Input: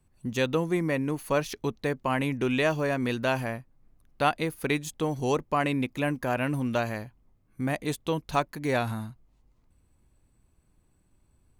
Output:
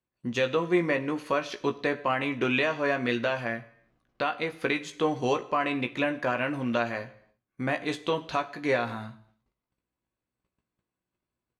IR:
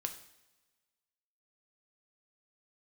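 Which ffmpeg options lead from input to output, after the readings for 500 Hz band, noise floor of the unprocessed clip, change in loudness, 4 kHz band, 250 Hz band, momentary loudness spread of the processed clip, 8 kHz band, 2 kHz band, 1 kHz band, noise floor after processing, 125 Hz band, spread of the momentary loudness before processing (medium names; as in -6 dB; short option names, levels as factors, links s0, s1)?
+0.5 dB, -67 dBFS, 0.0 dB, +1.5 dB, -1.5 dB, 7 LU, -6.0 dB, +2.5 dB, 0.0 dB, under -85 dBFS, -6.0 dB, 7 LU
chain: -filter_complex "[0:a]lowpass=4100,bandreject=f=850:w=12,agate=range=0.126:threshold=0.00112:ratio=16:detection=peak,highpass=f=460:p=1,alimiter=limit=0.0891:level=0:latency=1:release=336,asplit=2[s0][s1];[s1]adelay=17,volume=0.422[s2];[s0][s2]amix=inputs=2:normalize=0,asplit=2[s3][s4];[1:a]atrim=start_sample=2205,afade=t=out:st=0.39:d=0.01,atrim=end_sample=17640[s5];[s4][s5]afir=irnorm=-1:irlink=0,volume=1.12[s6];[s3][s6]amix=inputs=2:normalize=0"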